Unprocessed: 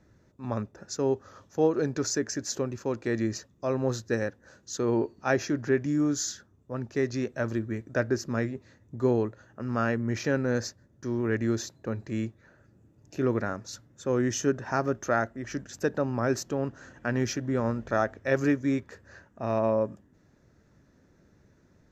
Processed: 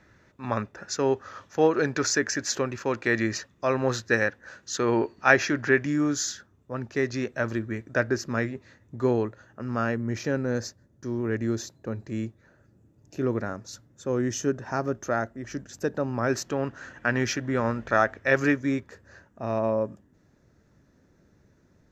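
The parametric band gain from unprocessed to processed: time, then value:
parametric band 2,000 Hz 2.5 octaves
0:05.72 +12.5 dB
0:06.30 +6 dB
0:09.03 +6 dB
0:10.22 −2 dB
0:15.91 −2 dB
0:16.53 +8.5 dB
0:18.50 +8.5 dB
0:18.90 −0.5 dB

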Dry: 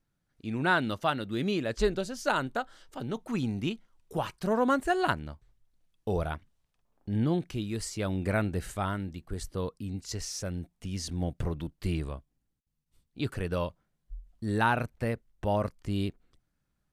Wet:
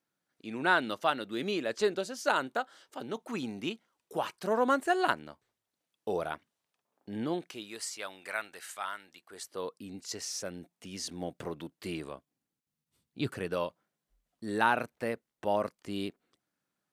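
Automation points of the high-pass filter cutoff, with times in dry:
0:07.19 300 Hz
0:08.22 1,100 Hz
0:09.02 1,100 Hz
0:09.84 290 Hz
0:12.08 290 Hz
0:13.20 120 Hz
0:13.57 270 Hz

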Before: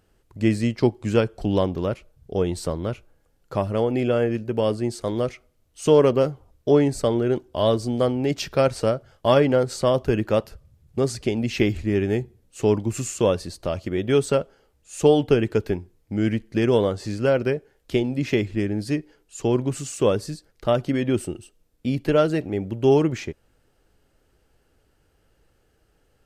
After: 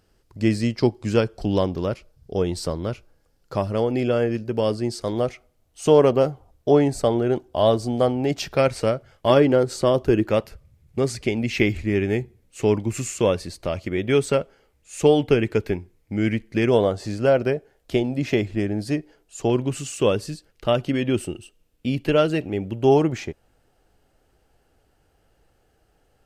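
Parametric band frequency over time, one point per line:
parametric band +7 dB 0.43 octaves
5,000 Hz
from 0:05.13 740 Hz
from 0:08.57 2,200 Hz
from 0:09.30 340 Hz
from 0:10.29 2,200 Hz
from 0:16.71 680 Hz
from 0:19.50 2,800 Hz
from 0:22.81 740 Hz

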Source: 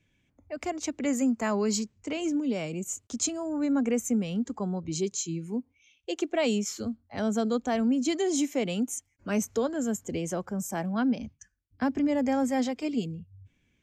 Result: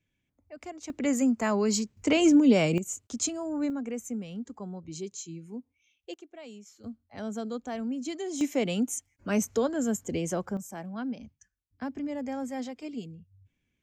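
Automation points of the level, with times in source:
−9 dB
from 0:00.90 +1 dB
from 0:01.97 +9 dB
from 0:02.78 −1 dB
from 0:03.70 −8 dB
from 0:06.14 −19.5 dB
from 0:06.84 −7.5 dB
from 0:08.41 +1 dB
from 0:10.57 −8 dB

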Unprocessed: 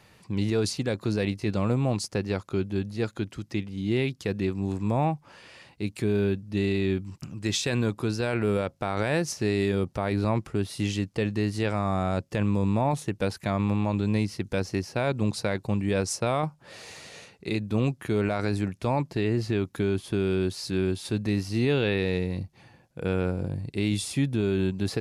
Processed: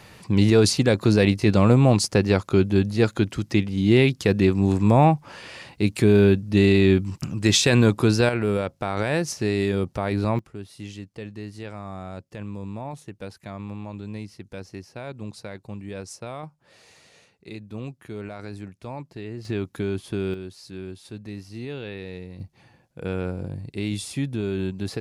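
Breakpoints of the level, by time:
+9 dB
from 0:08.29 +2 dB
from 0:10.39 −9.5 dB
from 0:19.45 −1 dB
from 0:20.34 −10 dB
from 0:22.40 −1.5 dB

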